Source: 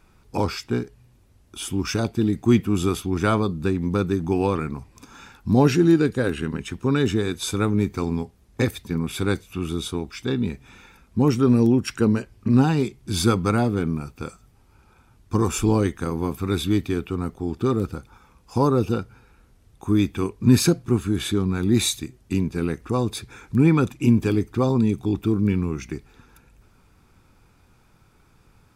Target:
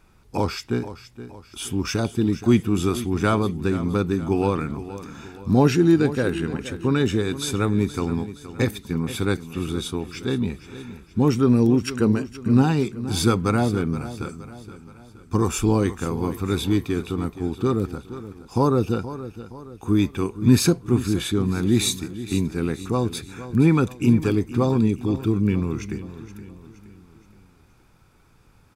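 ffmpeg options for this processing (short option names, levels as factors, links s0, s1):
-af "aecho=1:1:471|942|1413|1884:0.2|0.0918|0.0422|0.0194"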